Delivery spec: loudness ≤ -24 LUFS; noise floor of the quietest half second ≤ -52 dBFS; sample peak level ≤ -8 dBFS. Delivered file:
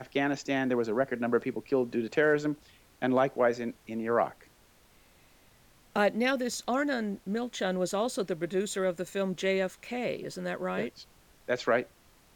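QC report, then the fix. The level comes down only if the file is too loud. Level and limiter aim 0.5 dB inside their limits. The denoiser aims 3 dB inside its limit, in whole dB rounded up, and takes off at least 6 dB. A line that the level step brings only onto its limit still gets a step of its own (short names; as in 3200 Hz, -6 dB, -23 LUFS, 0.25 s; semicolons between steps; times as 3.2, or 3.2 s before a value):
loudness -30.5 LUFS: OK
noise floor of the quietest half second -61 dBFS: OK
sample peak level -13.0 dBFS: OK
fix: none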